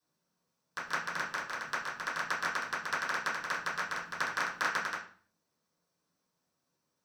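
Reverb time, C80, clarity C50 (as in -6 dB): 0.45 s, 11.5 dB, 6.5 dB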